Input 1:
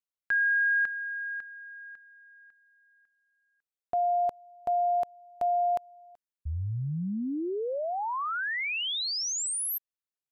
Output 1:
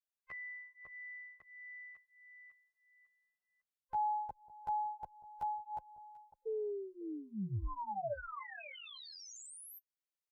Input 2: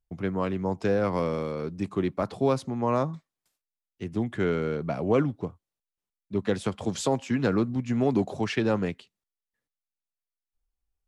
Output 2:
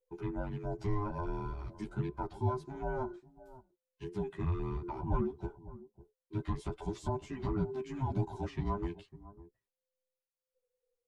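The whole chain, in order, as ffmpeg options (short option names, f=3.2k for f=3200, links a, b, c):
-filter_complex "[0:a]afftfilt=real='real(if(between(b,1,1008),(2*floor((b-1)/24)+1)*24-b,b),0)':imag='imag(if(between(b,1,1008),(2*floor((b-1)/24)+1)*24-b,b),0)*if(between(b,1,1008),-1,1)':win_size=2048:overlap=0.75,equalizer=f=270:w=3.5:g=-14,acrossover=split=860[a][b];[a]aecho=1:1:551:0.141[c];[b]acompressor=threshold=-46dB:ratio=8:attack=5.6:release=119:knee=1:detection=rms[d];[c][d]amix=inputs=2:normalize=0,asplit=2[e][f];[f]adelay=11.3,afreqshift=-1.5[g];[e][g]amix=inputs=2:normalize=1,volume=-2.5dB"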